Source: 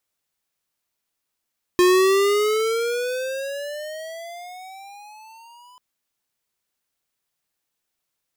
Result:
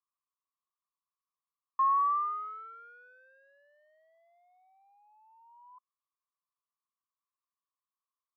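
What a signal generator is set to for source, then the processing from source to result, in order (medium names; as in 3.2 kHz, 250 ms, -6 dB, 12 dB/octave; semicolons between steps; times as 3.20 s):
gliding synth tone square, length 3.99 s, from 356 Hz, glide +18 st, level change -34.5 dB, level -14 dB
Butterworth band-pass 1.1 kHz, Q 5.9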